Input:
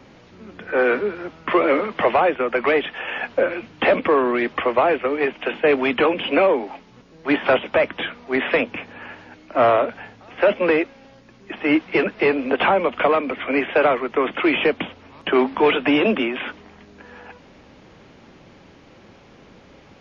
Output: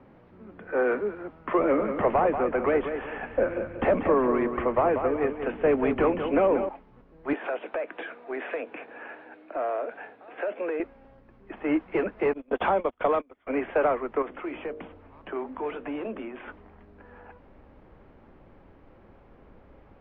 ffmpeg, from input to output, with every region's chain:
-filter_complex "[0:a]asettb=1/sr,asplit=3[s0][s1][s2];[s0]atrim=end=1.594[s3];[s1]atrim=start=1.59:end=6.69,asetpts=PTS-STARTPTS,afade=t=in:d=0.004:c=qsin,afade=t=out:st=5.096:d=0.004:c=qsin,bass=f=250:g=9,treble=f=4000:g=-4,aecho=1:1:187|374|561|748:0.398|0.139|0.0488|0.0171,atrim=end_sample=224910[s4];[s2]atrim=start=6.686[s5];[s3][s4]acrossfade=d=0.004:c1=hsin:c2=qsin[s6];[s6][s5]acrossfade=d=0.004:c1=qsin:c2=hsin,asettb=1/sr,asplit=3[s7][s8][s9];[s7]atrim=end=7.334[s10];[s8]atrim=start=7.33:end=10.8,asetpts=PTS-STARTPTS,afade=t=in:d=0.004:c=qsin,afade=t=out:st=3.466:d=0.004:c=qsin,highpass=300,equalizer=f=320:t=q:w=4:g=6,equalizer=f=460:t=q:w=4:g=6,equalizer=f=690:t=q:w=4:g=6,equalizer=f=1600:t=q:w=4:g=7,equalizer=f=2500:t=q:w=4:g=7,equalizer=f=3700:t=q:w=4:g=7,lowpass=f=4800:w=0.5412,lowpass=f=4800:w=1.3066,acompressor=threshold=0.0708:ratio=3:attack=3.2:release=140:knee=1:detection=peak[s11];[s9]atrim=start=10.796[s12];[s10][s11]acrossfade=d=0.004:c1=hsin:c2=qsin[s13];[s13][s12]acrossfade=d=0.004:c1=qsin:c2=hsin,asettb=1/sr,asplit=3[s14][s15][s16];[s14]atrim=end=12.334[s17];[s15]atrim=start=12.33:end=13.47,asetpts=PTS-STARTPTS,afade=t=in:d=0.004:c=qsin,afade=t=out:st=1.136:d=0.004:c=qsin,equalizer=f=3400:w=6.3:g=12.5,agate=range=0.0355:threshold=0.0794:ratio=16:release=100:detection=peak[s18];[s16]atrim=start=13.466[s19];[s17][s18]acrossfade=d=0.004:c1=hsin:c2=qsin[s20];[s20][s19]acrossfade=d=0.004:c1=qsin:c2=hsin,asettb=1/sr,asplit=3[s21][s22][s23];[s21]atrim=end=14.224[s24];[s22]atrim=start=14.22:end=16.48,asetpts=PTS-STARTPTS,afade=t=in:d=0.004:c=qsin,afade=t=out:st=2.256:d=0.004:c=qsin,bandreject=f=51.37:t=h:w=4,bandreject=f=102.74:t=h:w=4,bandreject=f=154.11:t=h:w=4,bandreject=f=205.48:t=h:w=4,bandreject=f=256.85:t=h:w=4,bandreject=f=308.22:t=h:w=4,bandreject=f=359.59:t=h:w=4,bandreject=f=410.96:t=h:w=4,bandreject=f=462.33:t=h:w=4,bandreject=f=513.7:t=h:w=4,bandreject=f=565.07:t=h:w=4,bandreject=f=616.44:t=h:w=4,acompressor=threshold=0.0141:ratio=1.5:attack=3.2:release=140:knee=1:detection=peak[s25];[s23]atrim=start=16.476[s26];[s24][s25]acrossfade=d=0.004:c1=hsin:c2=qsin[s27];[s27][s26]acrossfade=d=0.004:c1=qsin:c2=hsin,lowpass=1400,asubboost=boost=4.5:cutoff=62,volume=0.531"

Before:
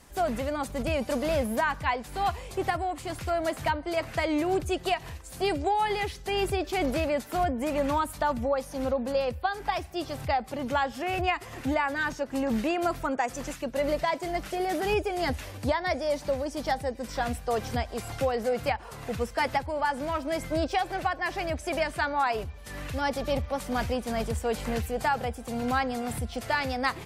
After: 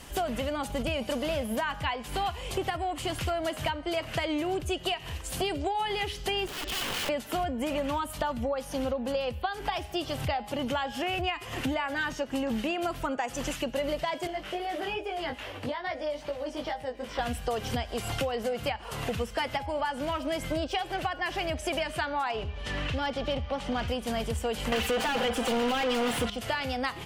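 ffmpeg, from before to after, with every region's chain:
-filter_complex "[0:a]asettb=1/sr,asplit=3[s0][s1][s2];[s0]atrim=end=6.474[s3];[s1]atrim=start=6.47:end=7.09,asetpts=PTS-STARTPTS,afade=t=in:d=0.004:c=qsin,afade=t=out:st=0.616:d=0.004:c=qsin,lowpass=3700,acompressor=threshold=0.0251:ratio=4:attack=3.2:release=140:knee=1:detection=peak,aeval=exprs='(mod(53.1*val(0)+1,2)-1)/53.1':c=same[s4];[s2]atrim=start=7.086[s5];[s3][s4]acrossfade=d=0.004:c1=hsin:c2=qsin[s6];[s6][s5]acrossfade=d=0.004:c1=qsin:c2=hsin,asettb=1/sr,asplit=3[s7][s8][s9];[s7]atrim=end=14.274[s10];[s8]atrim=start=14.27:end=17.19,asetpts=PTS-STARTPTS,afade=t=in:d=0.004:c=qsin,afade=t=out:st=2.916:d=0.004:c=qsin,bass=f=250:g=-9,treble=f=4000:g=-13,acrossover=split=92|3400[s11][s12][s13];[s11]acompressor=threshold=0.00158:ratio=4[s14];[s12]acompressor=threshold=0.0178:ratio=4[s15];[s13]acompressor=threshold=0.00224:ratio=4[s16];[s14][s15][s16]amix=inputs=3:normalize=0,flanger=delay=17.5:depth=2.9:speed=2.4[s17];[s9]atrim=start=17.186[s18];[s10][s17]acrossfade=d=0.004:c1=hsin:c2=qsin[s19];[s19][s18]acrossfade=d=0.004:c1=qsin:c2=hsin,asettb=1/sr,asplit=3[s20][s21][s22];[s20]atrim=end=22.294[s23];[s21]atrim=start=22.29:end=23.88,asetpts=PTS-STARTPTS,afade=t=in:d=0.004:c=qsin,afade=t=out:st=1.586:d=0.004:c=qsin,lowpass=4800,acompressor=mode=upward:threshold=0.0112:ratio=2.5:attack=3.2:release=140:knee=2.83:detection=peak,asoftclip=type=hard:threshold=0.0944[s24];[s22]atrim=start=23.876[s25];[s23][s24]acrossfade=d=0.004:c1=hsin:c2=qsin[s26];[s26][s25]acrossfade=d=0.004:c1=qsin:c2=hsin,asettb=1/sr,asplit=3[s27][s28][s29];[s27]atrim=end=24.724[s30];[s28]atrim=start=24.72:end=26.3,asetpts=PTS-STARTPTS,afade=t=in:d=0.004:c=qsin,afade=t=out:st=1.576:d=0.004:c=qsin,bandreject=f=730:w=14,asplit=2[s31][s32];[s32]highpass=f=720:p=1,volume=63.1,asoftclip=type=tanh:threshold=0.2[s33];[s31][s33]amix=inputs=2:normalize=0,lowpass=f=2600:p=1,volume=0.501,aecho=1:1:4.1:0.42,atrim=end_sample=69678[s34];[s29]atrim=start=26.296[s35];[s30][s34]acrossfade=d=0.004:c1=hsin:c2=qsin[s36];[s36][s35]acrossfade=d=0.004:c1=qsin:c2=hsin,equalizer=f=3000:t=o:w=0.32:g=10,bandreject=f=206.5:t=h:w=4,bandreject=f=413:t=h:w=4,bandreject=f=619.5:t=h:w=4,bandreject=f=826:t=h:w=4,bandreject=f=1032.5:t=h:w=4,bandreject=f=1239:t=h:w=4,bandreject=f=1445.5:t=h:w=4,bandreject=f=1652:t=h:w=4,bandreject=f=1858.5:t=h:w=4,bandreject=f=2065:t=h:w=4,bandreject=f=2271.5:t=h:w=4,bandreject=f=2478:t=h:w=4,bandreject=f=2684.5:t=h:w=4,bandreject=f=2891:t=h:w=4,bandreject=f=3097.5:t=h:w=4,bandreject=f=3304:t=h:w=4,bandreject=f=3510.5:t=h:w=4,bandreject=f=3717:t=h:w=4,bandreject=f=3923.5:t=h:w=4,bandreject=f=4130:t=h:w=4,bandreject=f=4336.5:t=h:w=4,bandreject=f=4543:t=h:w=4,bandreject=f=4749.5:t=h:w=4,bandreject=f=4956:t=h:w=4,bandreject=f=5162.5:t=h:w=4,bandreject=f=5369:t=h:w=4,bandreject=f=5575.5:t=h:w=4,bandreject=f=5782:t=h:w=4,bandreject=f=5988.5:t=h:w=4,bandreject=f=6195:t=h:w=4,bandreject=f=6401.5:t=h:w=4,bandreject=f=6608:t=h:w=4,bandreject=f=6814.5:t=h:w=4,bandreject=f=7021:t=h:w=4,bandreject=f=7227.5:t=h:w=4,bandreject=f=7434:t=h:w=4,bandreject=f=7640.5:t=h:w=4,bandreject=f=7847:t=h:w=4,bandreject=f=8053.5:t=h:w=4,acompressor=threshold=0.0158:ratio=5,volume=2.37"

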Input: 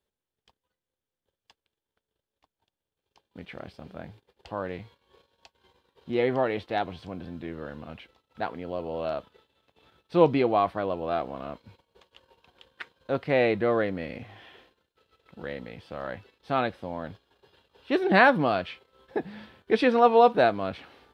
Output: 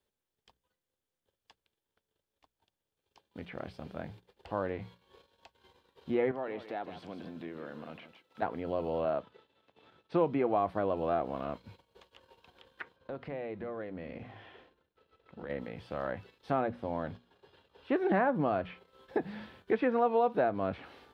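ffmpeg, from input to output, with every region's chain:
-filter_complex "[0:a]asettb=1/sr,asplit=3[s0][s1][s2];[s0]atrim=end=6.314[s3];[s1]atrim=start=6.31:end=8.42,asetpts=PTS-STARTPTS,afade=t=in:d=0.004:c=qsin,afade=t=out:st=2.106:d=0.004:c=qsin,highpass=180,acompressor=threshold=0.00891:ratio=2:attack=3.2:release=140:knee=1:detection=peak,aecho=1:1:156:0.251,atrim=end_sample=93051[s4];[s2]atrim=start=8.416[s5];[s3][s4]acrossfade=d=0.004:c1=hsin:c2=qsin[s6];[s6][s5]acrossfade=d=0.004:c1=qsin:c2=hsin,asettb=1/sr,asplit=3[s7][s8][s9];[s7]atrim=end=9.054[s10];[s8]atrim=start=9.05:end=10.57,asetpts=PTS-STARTPTS,afade=t=in:d=0.004:c=qsin,afade=t=out:st=1.516:d=0.004:c=qsin,highpass=110,aemphasis=mode=reproduction:type=50fm[s11];[s9]atrim=start=10.566[s12];[s10][s11]acrossfade=d=0.004:c1=hsin:c2=qsin[s13];[s13][s12]acrossfade=d=0.004:c1=qsin:c2=hsin,asettb=1/sr,asplit=3[s14][s15][s16];[s14]atrim=end=12.964[s17];[s15]atrim=start=12.96:end=15.5,asetpts=PTS-STARTPTS,afade=t=in:d=0.004:c=qsin,afade=t=out:st=2.536:d=0.004:c=qsin,lowpass=f=1700:p=1,acompressor=threshold=0.0141:ratio=5:attack=3.2:release=140:knee=1:detection=peak,bandreject=f=50:t=h:w=6,bandreject=f=100:t=h:w=6,bandreject=f=150:t=h:w=6,bandreject=f=200:t=h:w=6,bandreject=f=250:t=h:w=6,bandreject=f=300:t=h:w=6,bandreject=f=350:t=h:w=6[s18];[s16]atrim=start=15.496[s19];[s17][s18]acrossfade=d=0.004:c1=hsin:c2=qsin[s20];[s20][s19]acrossfade=d=0.004:c1=qsin:c2=hsin,asettb=1/sr,asplit=3[s21][s22][s23];[s21]atrim=end=16.524[s24];[s22]atrim=start=16.52:end=17.92,asetpts=PTS-STARTPTS,afade=t=in:d=0.004:c=qsin,afade=t=out:st=1.396:d=0.004:c=qsin,highshelf=f=4200:g=-8,bandreject=f=60:t=h:w=6,bandreject=f=120:t=h:w=6,bandreject=f=180:t=h:w=6,bandreject=f=240:t=h:w=6[s25];[s23]atrim=start=17.916[s26];[s24][s25]acrossfade=d=0.004:c1=hsin:c2=qsin[s27];[s27][s26]acrossfade=d=0.004:c1=qsin:c2=hsin,acrossover=split=2600[s28][s29];[s29]acompressor=threshold=0.002:ratio=4:attack=1:release=60[s30];[s28][s30]amix=inputs=2:normalize=0,bandreject=f=60:t=h:w=6,bandreject=f=120:t=h:w=6,bandreject=f=180:t=h:w=6,acrossover=split=860|2200[s31][s32][s33];[s31]acompressor=threshold=0.0447:ratio=4[s34];[s32]acompressor=threshold=0.0126:ratio=4[s35];[s33]acompressor=threshold=0.00158:ratio=4[s36];[s34][s35][s36]amix=inputs=3:normalize=0"

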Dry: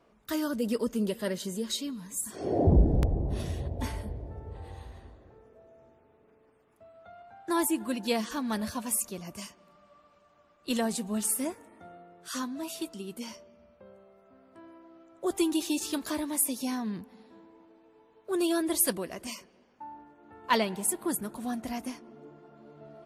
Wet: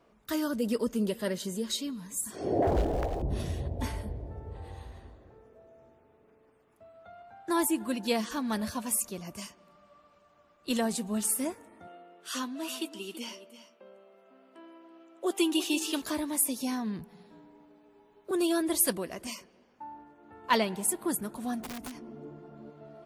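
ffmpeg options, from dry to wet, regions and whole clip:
-filter_complex "[0:a]asettb=1/sr,asplit=3[s0][s1][s2];[s0]atrim=end=2.624[s3];[s1]atrim=start=2.62:end=3.22,asetpts=PTS-STARTPTS,afade=t=in:d=0.004:c=qsin,afade=t=out:st=0.596:d=0.004:c=qsin,equalizer=f=180:w=0.57:g=-12.5,acrusher=bits=8:mode=log:mix=0:aa=0.000001,asplit=2[s4][s5];[s5]highpass=f=720:p=1,volume=8.91,asoftclip=type=tanh:threshold=0.168[s6];[s4][s6]amix=inputs=2:normalize=0,lowpass=f=2100:p=1,volume=0.501[s7];[s2]atrim=start=3.216[s8];[s3][s7]acrossfade=d=0.004:c1=hsin:c2=qsin[s9];[s9][s8]acrossfade=d=0.004:c1=qsin:c2=hsin,asettb=1/sr,asplit=3[s10][s11][s12];[s10]atrim=end=11.874[s13];[s11]atrim=start=11.87:end=16.02,asetpts=PTS-STARTPTS,afade=t=in:d=0.004:c=qsin,afade=t=out:st=4.146:d=0.004:c=qsin,highpass=f=230:w=0.5412,highpass=f=230:w=1.3066,equalizer=f=2900:t=o:w=0.4:g=9,aecho=1:1:331:0.211,atrim=end_sample=183015[s14];[s12]atrim=start=16.016[s15];[s13][s14]acrossfade=d=0.004:c1=hsin:c2=qsin[s16];[s16][s15]acrossfade=d=0.004:c1=qsin:c2=hsin,asettb=1/sr,asplit=3[s17][s18][s19];[s17]atrim=end=16.994[s20];[s18]atrim=start=16.99:end=18.31,asetpts=PTS-STARTPTS,afade=t=in:d=0.004:c=qsin,afade=t=out:st=1.316:d=0.004:c=qsin,highshelf=f=9200:g=4.5,afreqshift=-33[s21];[s19]atrim=start=18.306[s22];[s20][s21]acrossfade=d=0.004:c1=hsin:c2=qsin[s23];[s23][s22]acrossfade=d=0.004:c1=qsin:c2=hsin,asettb=1/sr,asplit=3[s24][s25][s26];[s24]atrim=end=21.604[s27];[s25]atrim=start=21.6:end=22.7,asetpts=PTS-STARTPTS,afade=t=in:d=0.004:c=qsin,afade=t=out:st=1.096:d=0.004:c=qsin,lowshelf=f=380:g=9,acompressor=threshold=0.0158:ratio=16:attack=3.2:release=140:knee=1:detection=peak,aeval=exprs='(mod(53.1*val(0)+1,2)-1)/53.1':c=same[s28];[s26]atrim=start=22.696[s29];[s27][s28]acrossfade=d=0.004:c1=hsin:c2=qsin[s30];[s30][s29]acrossfade=d=0.004:c1=qsin:c2=hsin"

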